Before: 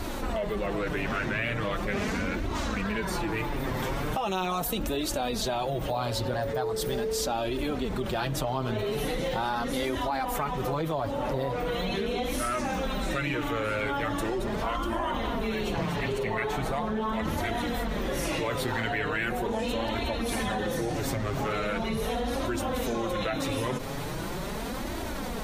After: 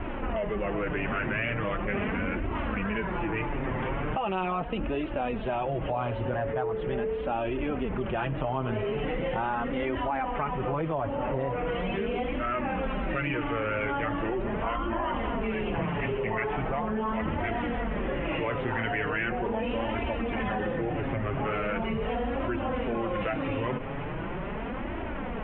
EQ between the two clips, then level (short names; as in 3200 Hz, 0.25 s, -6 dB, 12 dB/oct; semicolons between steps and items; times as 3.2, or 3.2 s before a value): steep low-pass 3000 Hz 72 dB/oct; 0.0 dB